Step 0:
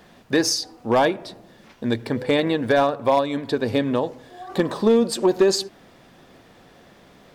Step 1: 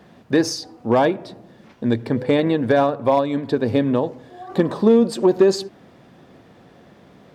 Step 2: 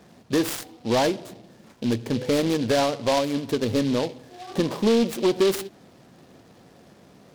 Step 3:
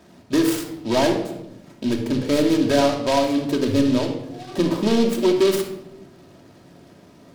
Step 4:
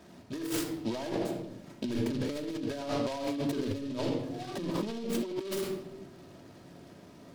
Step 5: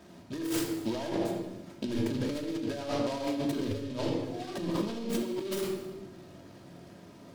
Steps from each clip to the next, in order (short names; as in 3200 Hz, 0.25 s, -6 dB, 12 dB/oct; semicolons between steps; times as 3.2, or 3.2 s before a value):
HPF 96 Hz; tilt -2 dB/oct
in parallel at -8.5 dB: wavefolder -15.5 dBFS; on the sum: noise-modulated delay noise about 3300 Hz, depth 0.069 ms; gain -6 dB
reverb RT60 0.85 s, pre-delay 3 ms, DRR 1.5 dB
negative-ratio compressor -25 dBFS, ratio -1; gain -8.5 dB
non-linear reverb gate 0.35 s falling, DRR 6.5 dB